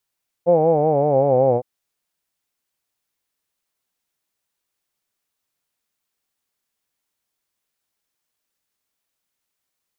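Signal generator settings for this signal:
vowel from formants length 1.16 s, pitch 169 Hz, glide −5.5 semitones, F1 520 Hz, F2 790 Hz, F3 2,300 Hz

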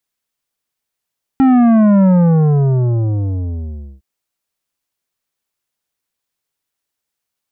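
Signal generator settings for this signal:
bass drop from 270 Hz, over 2.61 s, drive 10.5 dB, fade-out 1.97 s, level −8 dB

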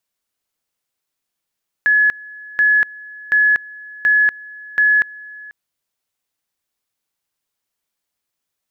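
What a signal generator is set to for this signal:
tone at two levels in turn 1,700 Hz −10 dBFS, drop 22.5 dB, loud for 0.24 s, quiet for 0.49 s, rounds 5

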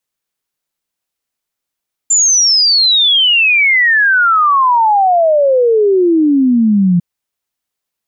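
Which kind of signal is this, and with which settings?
exponential sine sweep 7,300 Hz → 170 Hz 4.90 s −7 dBFS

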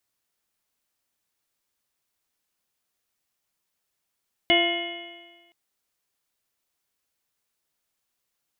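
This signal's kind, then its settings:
stiff-string partials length 1.02 s, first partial 341 Hz, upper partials 1/−14.5/−18.5/−14/3/−17/2.5/−8.5 dB, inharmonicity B 0.0026, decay 1.38 s, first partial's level −22 dB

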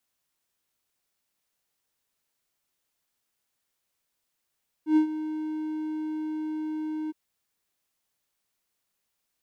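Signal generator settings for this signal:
note with an ADSR envelope triangle 310 Hz, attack 104 ms, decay 100 ms, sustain −13.5 dB, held 2.24 s, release 24 ms −13.5 dBFS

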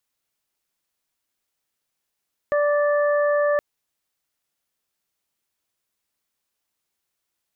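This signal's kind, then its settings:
steady harmonic partials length 1.07 s, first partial 585 Hz, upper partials −10/−10.5 dB, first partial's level −17.5 dB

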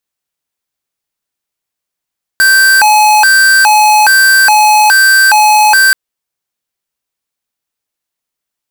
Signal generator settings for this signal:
siren hi-lo 849–1,560 Hz 1.2 per second square −6 dBFS 3.53 s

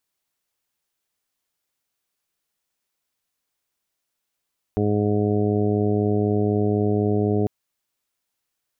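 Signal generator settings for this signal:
steady harmonic partials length 2.70 s, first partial 104 Hz, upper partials −1/−2.5/0/−11.5/−11/−10 dB, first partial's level −23 dB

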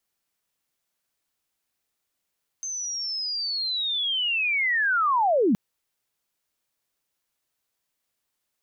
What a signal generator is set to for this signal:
glide linear 6,300 Hz → 180 Hz −29 dBFS → −17 dBFS 2.92 s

